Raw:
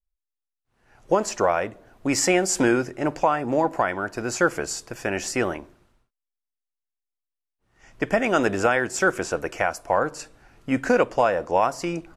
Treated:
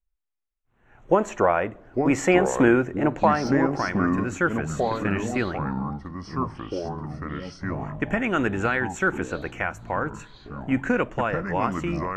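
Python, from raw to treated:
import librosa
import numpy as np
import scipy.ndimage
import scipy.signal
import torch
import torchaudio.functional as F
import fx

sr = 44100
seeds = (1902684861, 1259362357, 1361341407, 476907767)

y = scipy.signal.lfilter(np.full(9, 1.0 / 9), 1.0, x)
y = fx.peak_eq(y, sr, hz=630.0, db=fx.steps((0.0, -3.0), (3.47, -12.0)), octaves=1.6)
y = fx.echo_pitch(y, sr, ms=479, semitones=-5, count=3, db_per_echo=-6.0)
y = y * librosa.db_to_amplitude(3.5)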